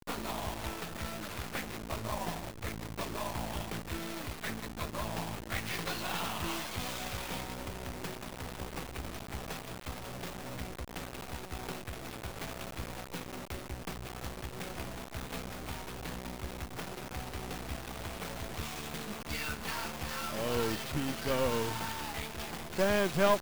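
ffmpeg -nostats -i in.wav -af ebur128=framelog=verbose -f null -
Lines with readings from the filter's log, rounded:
Integrated loudness:
  I:         -37.7 LUFS
  Threshold: -47.7 LUFS
Loudness range:
  LRA:         7.3 LU
  Threshold: -58.5 LUFS
  LRA low:   -41.9 LUFS
  LRA high:  -34.6 LUFS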